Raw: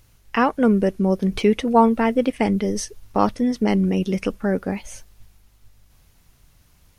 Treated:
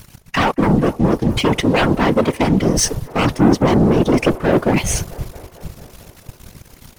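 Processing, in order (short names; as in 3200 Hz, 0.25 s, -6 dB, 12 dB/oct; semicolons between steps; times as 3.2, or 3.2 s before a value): sine folder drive 10 dB, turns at -3 dBFS; reverse; compressor 6:1, threshold -18 dBFS, peak gain reduction 12 dB; reverse; spectral gain 3.37–4.73, 220–1200 Hz +8 dB; sample leveller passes 3; whisperiser; on a send: band-limited delay 0.223 s, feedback 71%, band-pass 800 Hz, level -17 dB; on the sum: gain -6 dB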